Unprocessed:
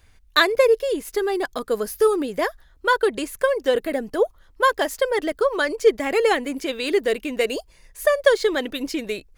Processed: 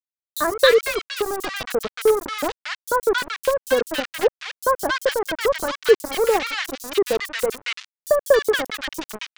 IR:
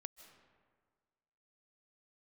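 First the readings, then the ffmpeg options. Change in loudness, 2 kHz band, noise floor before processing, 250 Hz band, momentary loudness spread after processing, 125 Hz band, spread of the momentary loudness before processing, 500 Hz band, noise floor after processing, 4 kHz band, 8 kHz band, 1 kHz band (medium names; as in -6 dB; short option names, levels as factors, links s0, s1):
0.0 dB, -0.5 dB, -54 dBFS, -5.0 dB, 10 LU, no reading, 8 LU, 0.0 dB, under -85 dBFS, +1.5 dB, +4.5 dB, -0.5 dB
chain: -filter_complex "[0:a]aeval=exprs='val(0)*gte(abs(val(0)),0.106)':c=same,acrossover=split=1300|5800[s0][s1][s2];[s0]adelay=40[s3];[s1]adelay=270[s4];[s3][s4][s2]amix=inputs=3:normalize=0,volume=1.19"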